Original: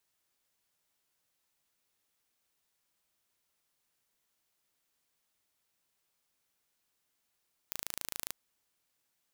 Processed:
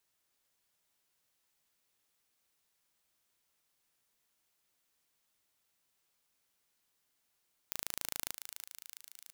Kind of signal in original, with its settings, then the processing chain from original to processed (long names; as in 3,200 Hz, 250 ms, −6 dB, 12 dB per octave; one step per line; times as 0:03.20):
impulse train 27.3 per second, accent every 0, −9.5 dBFS 0.62 s
feedback echo with a high-pass in the loop 331 ms, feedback 68%, high-pass 1,100 Hz, level −8 dB